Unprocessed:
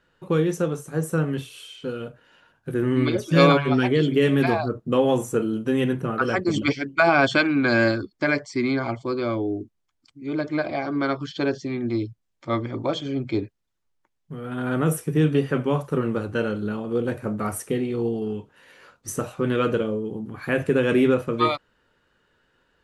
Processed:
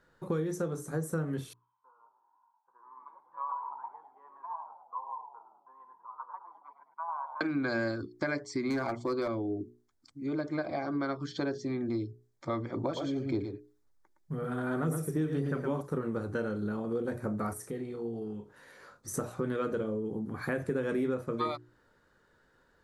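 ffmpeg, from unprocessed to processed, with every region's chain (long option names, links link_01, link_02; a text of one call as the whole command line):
ffmpeg -i in.wav -filter_complex "[0:a]asettb=1/sr,asplit=3[link_01][link_02][link_03];[link_01]atrim=end=1.534[link_04];[link_02]atrim=start=1.53:end=7.41,asetpts=PTS-STARTPTS,afade=type=in:duration=0.004:curve=qsin,afade=type=out:start_time=5.876:duration=0.004:curve=qsin,asuperpass=centerf=990:order=4:qfactor=7.7,asplit=6[link_05][link_06][link_07][link_08][link_09][link_10];[link_06]adelay=105,afreqshift=-49,volume=-10dB[link_11];[link_07]adelay=210,afreqshift=-98,volume=-16dB[link_12];[link_08]adelay=315,afreqshift=-147,volume=-22dB[link_13];[link_09]adelay=420,afreqshift=-196,volume=-28.1dB[link_14];[link_10]adelay=525,afreqshift=-245,volume=-34.1dB[link_15];[link_05][link_11][link_12][link_13][link_14][link_15]amix=inputs=6:normalize=0,atrim=end_sample=259308[link_16];[link_03]atrim=start=7.406[link_17];[link_04][link_16]acrossfade=duration=0.004:curve1=hsin:curve2=qsin[link_18];[link_18][link_17]acrossfade=duration=0.004:curve1=qsin:curve2=hsin,asettb=1/sr,asplit=3[link_19][link_20][link_21];[link_19]atrim=end=8.704[link_22];[link_20]atrim=start=8.7:end=9.28,asetpts=PTS-STARTPTS,afade=type=in:duration=0.004:curve=qsin,afade=type=out:start_time=0.576:duration=0.004:curve=qsin,acontrast=35,volume=14dB,asoftclip=hard,volume=-14dB,lowshelf=frequency=220:gain=-6.5[link_23];[link_21]atrim=start=9.276[link_24];[link_22][link_23]acrossfade=duration=0.004:curve1=hsin:curve2=qsin[link_25];[link_25][link_24]acrossfade=duration=0.004:curve1=qsin:curve2=hsin,asettb=1/sr,asplit=3[link_26][link_27][link_28];[link_26]atrim=end=12.834[link_29];[link_27]atrim=start=12.83:end=15.81,asetpts=PTS-STARTPTS,afade=type=in:duration=0.004:curve=qsin,afade=type=out:start_time=2.976:duration=0.004:curve=qsin,aecho=1:1:114:0.473,atrim=end_sample=131418,aphaser=in_gain=1:out_gain=1:delay=3.4:decay=0.33:speed=1.9:type=sinusoidal[link_30];[link_28]atrim=start=15.806[link_31];[link_29][link_30]acrossfade=duration=0.004:curve1=hsin:curve2=qsin[link_32];[link_32][link_31]acrossfade=duration=0.004:curve1=qsin:curve2=hsin,asettb=1/sr,asplit=3[link_33][link_34][link_35];[link_33]atrim=end=17.534[link_36];[link_34]atrim=start=17.53:end=19.14,asetpts=PTS-STARTPTS,afade=type=in:duration=0.004:curve=qsin,afade=type=out:start_time=1.606:duration=0.004:curve=qsin,asplit=2[link_37][link_38];[link_38]adelay=34,volume=-11dB[link_39];[link_37][link_39]amix=inputs=2:normalize=0,atrim=end_sample=71001,acompressor=threshold=-51dB:ratio=1.5:attack=3.2:release=140:knee=1:detection=peak[link_40];[link_35]atrim=start=19.136[link_41];[link_36][link_40]acrossfade=duration=0.004:curve1=hsin:curve2=qsin[link_42];[link_42][link_41]acrossfade=duration=0.004:curve1=qsin:curve2=hsin,equalizer=frequency=2800:width=2.9:gain=-13.5,bandreject=frequency=60:width_type=h:width=6,bandreject=frequency=120:width_type=h:width=6,bandreject=frequency=180:width_type=h:width=6,bandreject=frequency=240:width_type=h:width=6,bandreject=frequency=300:width_type=h:width=6,bandreject=frequency=360:width_type=h:width=6,bandreject=frequency=420:width_type=h:width=6,acompressor=threshold=-32dB:ratio=3" out.wav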